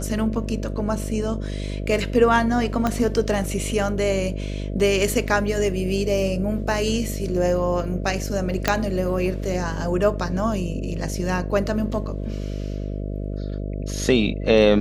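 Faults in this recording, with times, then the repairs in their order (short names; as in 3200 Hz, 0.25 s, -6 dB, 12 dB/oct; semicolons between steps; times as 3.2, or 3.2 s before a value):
buzz 50 Hz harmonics 13 -28 dBFS
2.87 pop -9 dBFS
8.68 pop -3 dBFS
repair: de-click; de-hum 50 Hz, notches 13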